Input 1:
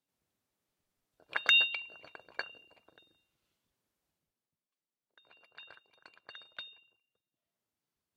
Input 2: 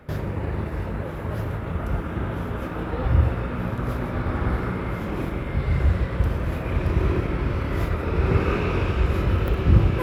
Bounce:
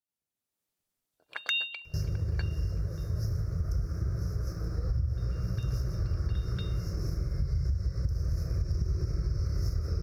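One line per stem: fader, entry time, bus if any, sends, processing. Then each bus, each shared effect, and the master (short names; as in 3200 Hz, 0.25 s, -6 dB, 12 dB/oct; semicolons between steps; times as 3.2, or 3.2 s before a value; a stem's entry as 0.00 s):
-14.0 dB, 0.00 s, no send, AGC gain up to 9 dB
+2.0 dB, 1.85 s, no send, fixed phaser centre 880 Hz, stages 6; compressor, threshold -23 dBFS, peak gain reduction 11 dB; EQ curve 160 Hz 0 dB, 530 Hz -16 dB, 1200 Hz -17 dB, 3100 Hz -26 dB, 5400 Hz +11 dB, 7800 Hz -13 dB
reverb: off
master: high shelf 4300 Hz +9.5 dB; compressor 3:1, threshold -26 dBFS, peak gain reduction 6 dB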